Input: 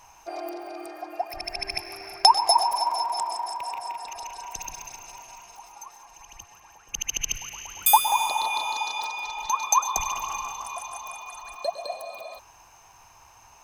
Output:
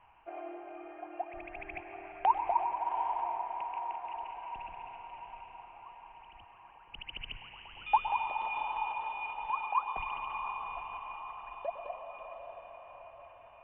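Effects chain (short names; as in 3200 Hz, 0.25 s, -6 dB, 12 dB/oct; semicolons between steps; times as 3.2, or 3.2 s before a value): steep low-pass 3100 Hz 96 dB/oct; diffused feedback echo 0.783 s, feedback 49%, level -7 dB; gain -8.5 dB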